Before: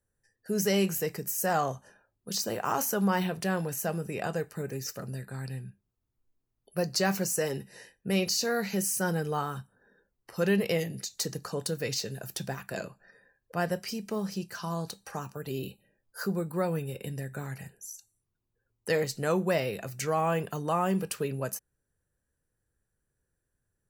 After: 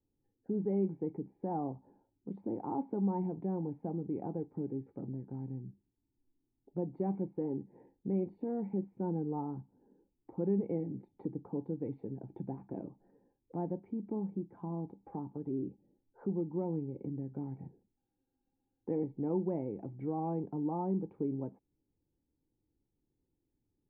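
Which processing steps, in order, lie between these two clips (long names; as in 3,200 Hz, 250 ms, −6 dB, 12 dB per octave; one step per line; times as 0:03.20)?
formant resonators in series u
in parallel at +3 dB: downward compressor, threshold −53 dBFS, peak gain reduction 19.5 dB
on the sum: notch filter 620 Hz, Q 12
frozen spectrum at 0:17.99, 0.82 s
level +4 dB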